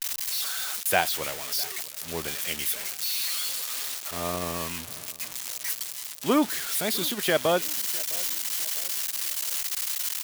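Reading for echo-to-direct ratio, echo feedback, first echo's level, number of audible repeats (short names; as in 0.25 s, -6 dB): -20.5 dB, 44%, -21.5 dB, 2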